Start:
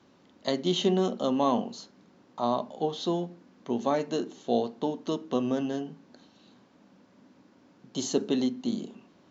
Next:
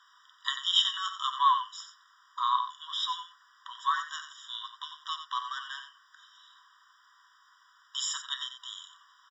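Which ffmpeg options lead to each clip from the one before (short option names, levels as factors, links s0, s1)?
-filter_complex "[0:a]asplit=2[s0][s1];[s1]aecho=0:1:90:0.335[s2];[s0][s2]amix=inputs=2:normalize=0,afftfilt=real='re*eq(mod(floor(b*sr/1024/970),2),1)':imag='im*eq(mod(floor(b*sr/1024/970),2),1)':win_size=1024:overlap=0.75,volume=2.66"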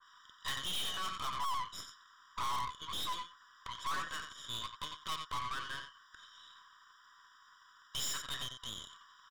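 -af "aeval=exprs='(tanh(89.1*val(0)+0.75)-tanh(0.75))/89.1':c=same,adynamicequalizer=threshold=0.00224:dfrequency=1700:dqfactor=0.7:tfrequency=1700:tqfactor=0.7:attack=5:release=100:ratio=0.375:range=2:mode=cutabove:tftype=highshelf,volume=1.68"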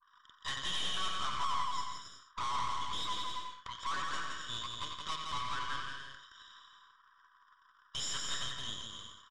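-filter_complex "[0:a]lowpass=f=8100:w=0.5412,lowpass=f=8100:w=1.3066,anlmdn=0.0000631,asplit=2[s0][s1];[s1]aecho=0:1:170|272|333.2|369.9|392:0.631|0.398|0.251|0.158|0.1[s2];[s0][s2]amix=inputs=2:normalize=0"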